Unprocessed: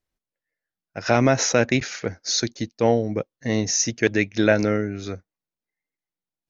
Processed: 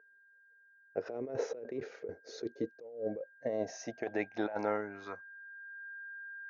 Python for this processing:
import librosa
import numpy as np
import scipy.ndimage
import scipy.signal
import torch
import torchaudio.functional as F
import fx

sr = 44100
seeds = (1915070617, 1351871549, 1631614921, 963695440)

y = x + 10.0 ** (-43.0 / 20.0) * np.sin(2.0 * np.pi * 1600.0 * np.arange(len(x)) / sr)
y = fx.filter_sweep_bandpass(y, sr, from_hz=440.0, to_hz=1300.0, start_s=2.57, end_s=5.87, q=6.3)
y = fx.over_compress(y, sr, threshold_db=-39.0, ratio=-1.0)
y = F.gain(torch.from_numpy(y), 1.5).numpy()